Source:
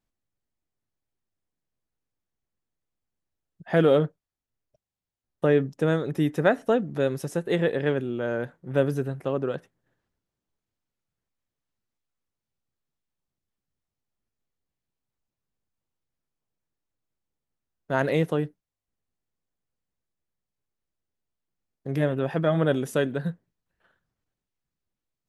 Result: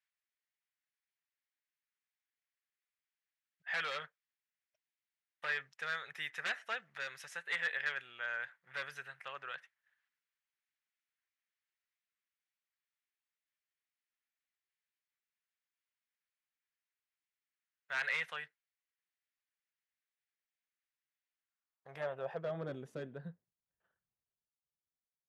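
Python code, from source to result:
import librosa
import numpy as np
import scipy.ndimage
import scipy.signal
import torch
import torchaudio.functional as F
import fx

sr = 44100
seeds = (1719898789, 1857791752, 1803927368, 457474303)

y = fx.tone_stack(x, sr, knobs='10-0-10')
y = 10.0 ** (-31.0 / 20.0) * (np.abs((y / 10.0 ** (-31.0 / 20.0) + 3.0) % 4.0 - 2.0) - 1.0)
y = fx.filter_sweep_bandpass(y, sr, from_hz=1900.0, to_hz=300.0, start_s=21.32, end_s=22.73, q=1.9)
y = y * 10.0 ** (8.0 / 20.0)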